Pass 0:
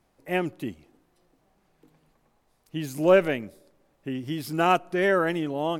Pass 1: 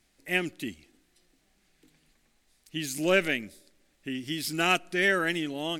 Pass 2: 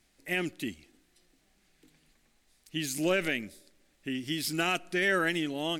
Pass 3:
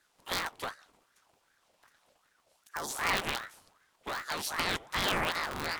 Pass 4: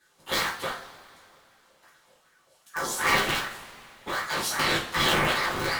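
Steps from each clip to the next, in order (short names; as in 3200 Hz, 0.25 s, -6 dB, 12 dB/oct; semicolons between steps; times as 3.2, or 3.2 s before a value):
ten-band EQ 125 Hz -9 dB, 500 Hz -7 dB, 1000 Hz -11 dB, 2000 Hz +5 dB, 4000 Hz +5 dB, 8000 Hz +7 dB; gain +1 dB
limiter -16 dBFS, peak gain reduction 7 dB
cycle switcher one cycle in 3, inverted; spectral gain 2.68–2.9, 1300–3800 Hz -20 dB; ring modulator with a swept carrier 1100 Hz, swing 50%, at 2.6 Hz
two-slope reverb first 0.37 s, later 2.7 s, from -21 dB, DRR -6 dB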